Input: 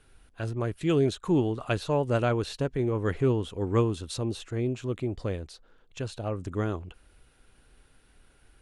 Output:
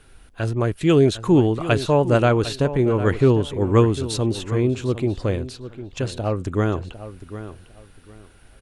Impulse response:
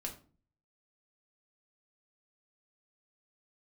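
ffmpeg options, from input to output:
-filter_complex "[0:a]asplit=2[link_01][link_02];[link_02]adelay=753,lowpass=frequency=3600:poles=1,volume=-13dB,asplit=2[link_03][link_04];[link_04]adelay=753,lowpass=frequency=3600:poles=1,volume=0.24,asplit=2[link_05][link_06];[link_06]adelay=753,lowpass=frequency=3600:poles=1,volume=0.24[link_07];[link_01][link_03][link_05][link_07]amix=inputs=4:normalize=0,volume=8.5dB"

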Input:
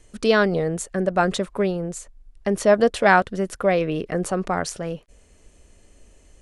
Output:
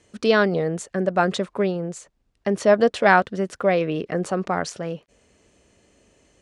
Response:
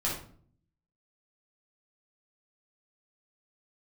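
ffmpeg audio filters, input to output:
-af "highpass=110,lowpass=6700"

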